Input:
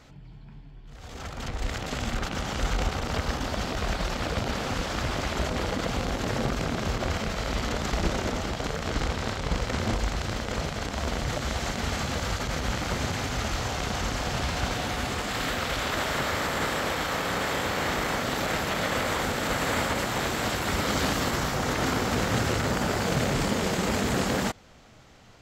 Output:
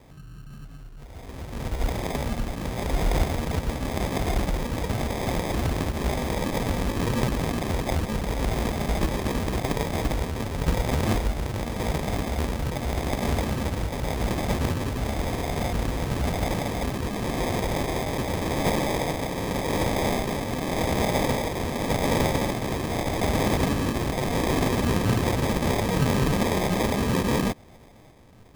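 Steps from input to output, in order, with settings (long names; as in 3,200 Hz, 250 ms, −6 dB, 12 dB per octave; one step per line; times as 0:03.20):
rotating-speaker cabinet horn 1 Hz
tempo change 0.89×
decimation without filtering 31×
level +5 dB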